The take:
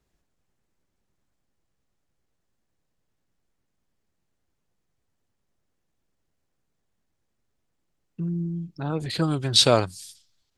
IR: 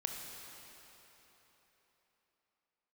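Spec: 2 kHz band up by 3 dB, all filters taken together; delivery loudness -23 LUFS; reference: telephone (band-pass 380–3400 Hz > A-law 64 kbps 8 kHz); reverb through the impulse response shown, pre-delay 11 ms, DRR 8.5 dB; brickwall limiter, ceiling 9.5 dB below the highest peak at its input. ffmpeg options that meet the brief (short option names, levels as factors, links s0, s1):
-filter_complex "[0:a]equalizer=f=2000:t=o:g=5,alimiter=limit=0.237:level=0:latency=1,asplit=2[s0][s1];[1:a]atrim=start_sample=2205,adelay=11[s2];[s1][s2]afir=irnorm=-1:irlink=0,volume=0.335[s3];[s0][s3]amix=inputs=2:normalize=0,highpass=380,lowpass=3400,volume=2.99" -ar 8000 -c:a pcm_alaw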